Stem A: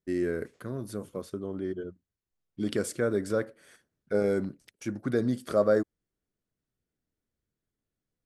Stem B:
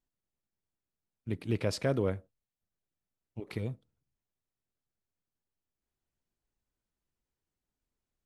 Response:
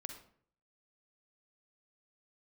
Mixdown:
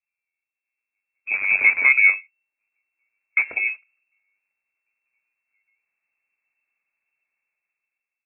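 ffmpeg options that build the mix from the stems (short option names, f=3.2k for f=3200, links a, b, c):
-filter_complex "[0:a]equalizer=f=1.8k:t=o:w=0.85:g=-11,acompressor=threshold=-30dB:ratio=6,acrusher=bits=7:dc=4:mix=0:aa=0.000001,volume=-2.5dB[a];[1:a]volume=-3dB,asplit=2[b][c];[c]apad=whole_len=364169[d];[a][d]sidechaingate=range=-58dB:threshold=-58dB:ratio=16:detection=peak[e];[e][b]amix=inputs=2:normalize=0,equalizer=f=500:t=o:w=0.48:g=12.5,dynaudnorm=f=380:g=5:m=11dB,lowpass=f=2.3k:t=q:w=0.5098,lowpass=f=2.3k:t=q:w=0.6013,lowpass=f=2.3k:t=q:w=0.9,lowpass=f=2.3k:t=q:w=2.563,afreqshift=-2700"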